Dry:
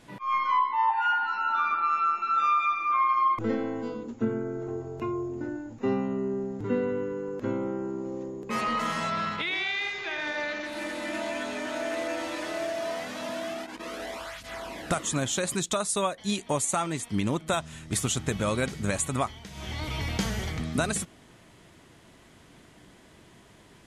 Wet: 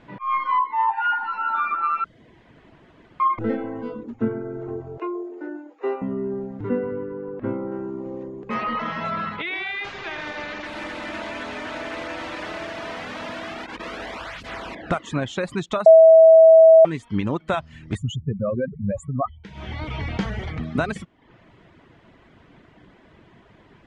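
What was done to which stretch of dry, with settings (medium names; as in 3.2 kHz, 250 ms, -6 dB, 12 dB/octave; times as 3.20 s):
2.04–3.20 s: room tone
4.98–6.02 s: Chebyshev high-pass 300 Hz, order 6
6.69–7.72 s: distance through air 320 m
8.54–9.05 s: elliptic low-pass 6 kHz
9.84–14.75 s: spectrum-flattening compressor 2:1
15.86–16.85 s: bleep 648 Hz -9 dBFS
17.95–19.44 s: spectral contrast enhancement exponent 3.2
whole clip: reverb removal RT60 0.58 s; low-pass 2.5 kHz 12 dB/octave; trim +4.5 dB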